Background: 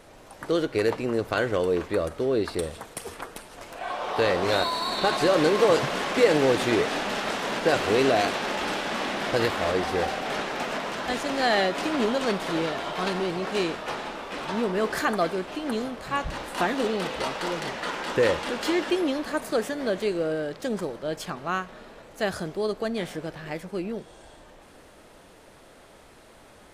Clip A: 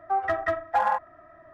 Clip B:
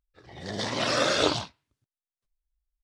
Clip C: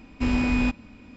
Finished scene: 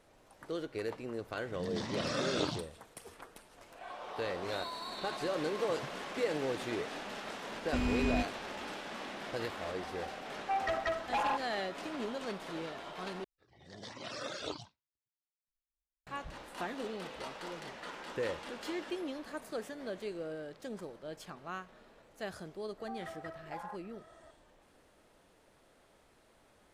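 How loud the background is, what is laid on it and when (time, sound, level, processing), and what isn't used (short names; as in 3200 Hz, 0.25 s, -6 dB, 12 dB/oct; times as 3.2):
background -14 dB
1.17 add B -11.5 dB + bell 180 Hz +11.5 dB 1 oct
7.52 add C -9.5 dB
10.39 add A -13.5 dB + sine folder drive 5 dB, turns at -14.5 dBFS
13.24 replace with B -15.5 dB + reverb removal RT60 0.76 s
22.78 add A -7.5 dB + compressor 2.5:1, threshold -41 dBFS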